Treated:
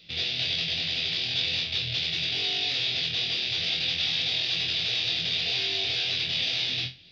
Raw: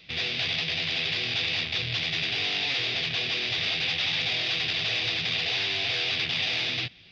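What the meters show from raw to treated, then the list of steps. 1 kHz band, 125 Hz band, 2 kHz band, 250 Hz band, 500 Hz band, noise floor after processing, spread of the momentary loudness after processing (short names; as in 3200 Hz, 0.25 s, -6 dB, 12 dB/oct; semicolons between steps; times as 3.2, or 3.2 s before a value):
-6.0 dB, -1.5 dB, -4.0 dB, -2.5 dB, -3.5 dB, -35 dBFS, 2 LU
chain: graphic EQ 1000/2000/4000 Hz -7/-5/+5 dB; on a send: flutter echo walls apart 4 m, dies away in 0.26 s; on the sum: gain -2.5 dB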